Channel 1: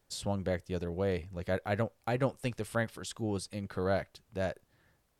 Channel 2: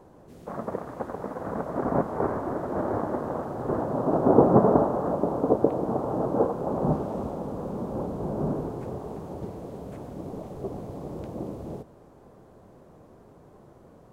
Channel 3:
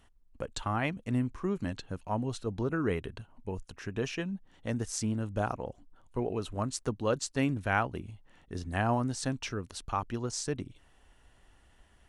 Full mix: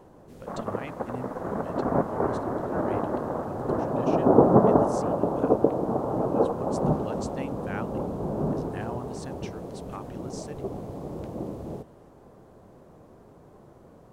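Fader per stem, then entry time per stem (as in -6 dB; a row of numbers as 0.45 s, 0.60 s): mute, +0.5 dB, -8.5 dB; mute, 0.00 s, 0.00 s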